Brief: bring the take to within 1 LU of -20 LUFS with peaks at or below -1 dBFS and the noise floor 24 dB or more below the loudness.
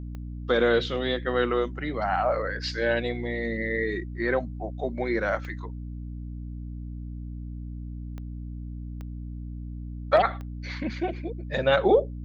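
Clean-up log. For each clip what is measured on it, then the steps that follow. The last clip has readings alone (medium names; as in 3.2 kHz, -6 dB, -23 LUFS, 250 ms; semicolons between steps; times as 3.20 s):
clicks found 5; hum 60 Hz; highest harmonic 300 Hz; hum level -33 dBFS; loudness -28.5 LUFS; peak level -8.0 dBFS; loudness target -20.0 LUFS
-> de-click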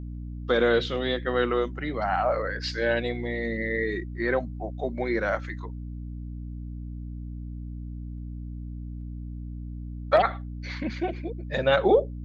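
clicks found 0; hum 60 Hz; highest harmonic 300 Hz; hum level -33 dBFS
-> de-hum 60 Hz, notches 5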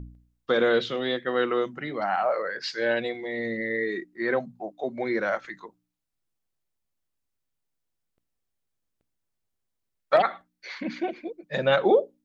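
hum not found; loudness -26.5 LUFS; peak level -8.0 dBFS; loudness target -20.0 LUFS
-> trim +6.5 dB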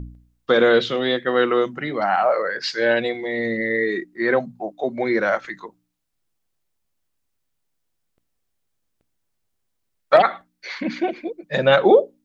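loudness -20.0 LUFS; peak level -1.5 dBFS; noise floor -74 dBFS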